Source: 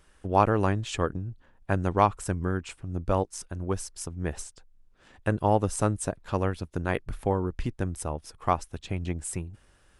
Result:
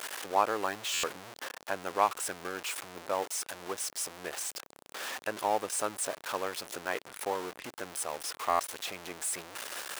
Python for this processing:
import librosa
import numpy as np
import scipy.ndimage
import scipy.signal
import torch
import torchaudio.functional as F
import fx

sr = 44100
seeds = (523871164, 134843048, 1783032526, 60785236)

y = x + 0.5 * 10.0 ** (-26.5 / 20.0) * np.sign(x)
y = scipy.signal.sosfilt(scipy.signal.butter(2, 530.0, 'highpass', fs=sr, output='sos'), y)
y = fx.buffer_glitch(y, sr, at_s=(0.93, 8.49), block=512, repeats=8)
y = y * librosa.db_to_amplitude(-4.5)